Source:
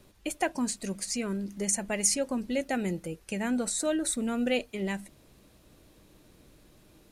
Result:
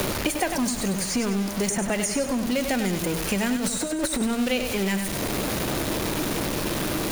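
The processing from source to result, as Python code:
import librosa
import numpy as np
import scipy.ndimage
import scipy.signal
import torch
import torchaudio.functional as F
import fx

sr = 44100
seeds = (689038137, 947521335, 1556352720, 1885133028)

y = x + 0.5 * 10.0 ** (-29.0 / 20.0) * np.sign(x)
y = fx.notch(y, sr, hz=7800.0, q=17.0)
y = fx.over_compress(y, sr, threshold_db=-30.0, ratio=-0.5, at=(3.56, 4.21))
y = fx.echo_feedback(y, sr, ms=97, feedback_pct=33, wet_db=-8)
y = fx.band_squash(y, sr, depth_pct=100)
y = y * 10.0 ** (1.5 / 20.0)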